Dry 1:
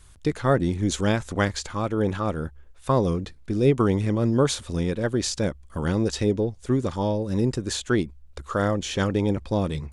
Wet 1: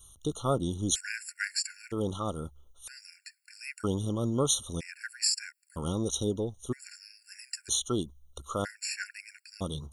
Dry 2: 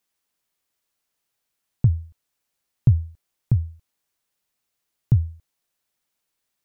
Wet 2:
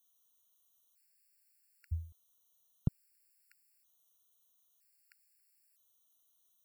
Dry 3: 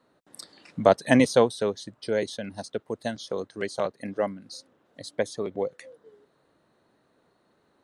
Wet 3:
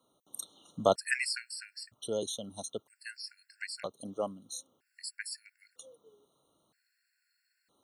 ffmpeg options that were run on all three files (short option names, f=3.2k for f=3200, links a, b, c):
-af "crystalizer=i=4.5:c=0,afftfilt=real='re*gt(sin(2*PI*0.52*pts/sr)*(1-2*mod(floor(b*sr/1024/1400),2)),0)':imag='im*gt(sin(2*PI*0.52*pts/sr)*(1-2*mod(floor(b*sr/1024/1400),2)),0)':win_size=1024:overlap=0.75,volume=-8dB"